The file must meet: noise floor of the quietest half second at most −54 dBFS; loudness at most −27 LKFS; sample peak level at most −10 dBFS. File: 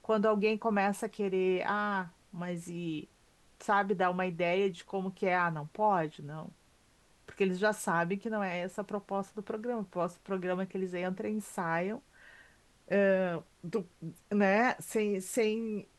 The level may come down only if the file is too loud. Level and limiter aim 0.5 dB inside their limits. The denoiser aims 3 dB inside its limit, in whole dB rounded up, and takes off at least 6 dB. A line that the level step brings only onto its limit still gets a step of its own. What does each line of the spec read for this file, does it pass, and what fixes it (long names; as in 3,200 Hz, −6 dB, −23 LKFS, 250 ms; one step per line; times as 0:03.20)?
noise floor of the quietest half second −66 dBFS: in spec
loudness −32.5 LKFS: in spec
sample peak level −16.0 dBFS: in spec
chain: no processing needed